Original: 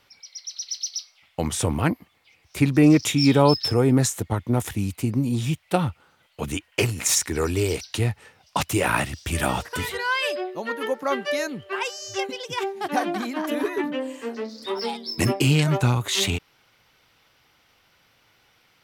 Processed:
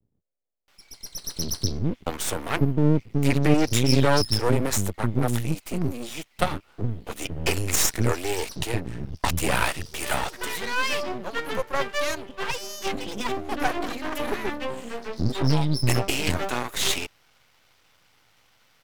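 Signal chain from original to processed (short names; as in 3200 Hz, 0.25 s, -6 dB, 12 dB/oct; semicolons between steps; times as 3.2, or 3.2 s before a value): bands offset in time lows, highs 0.68 s, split 290 Hz; half-wave rectifier; gain +3.5 dB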